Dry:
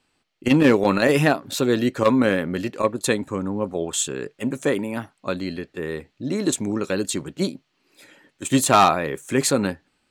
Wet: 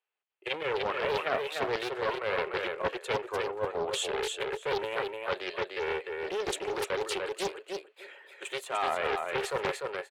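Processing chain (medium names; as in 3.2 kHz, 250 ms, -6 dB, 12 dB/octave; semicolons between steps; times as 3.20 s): gate with hold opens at -45 dBFS; elliptic high-pass 400 Hz, stop band 40 dB; resonant high shelf 3.9 kHz -10 dB, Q 1.5; reverse; compression 8:1, threshold -29 dBFS, peak gain reduction 18 dB; reverse; feedback delay 297 ms, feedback 16%, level -4 dB; loudspeaker Doppler distortion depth 0.45 ms; trim +1 dB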